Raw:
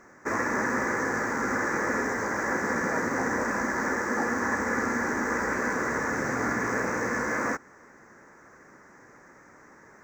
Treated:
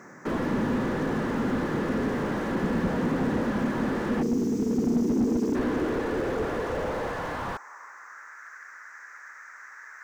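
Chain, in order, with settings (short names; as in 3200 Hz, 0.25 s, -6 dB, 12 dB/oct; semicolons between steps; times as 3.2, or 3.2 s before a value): high-pass sweep 150 Hz -> 1500 Hz, 4.68–8.42; spectral delete 4.22–5.56, 490–4400 Hz; slew limiter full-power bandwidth 16 Hz; gain +4.5 dB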